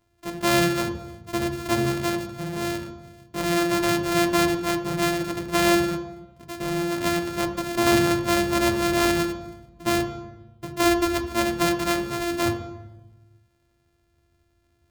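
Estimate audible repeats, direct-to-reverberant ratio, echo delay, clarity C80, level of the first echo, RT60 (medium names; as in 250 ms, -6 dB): no echo, 6.0 dB, no echo, 11.5 dB, no echo, 1.1 s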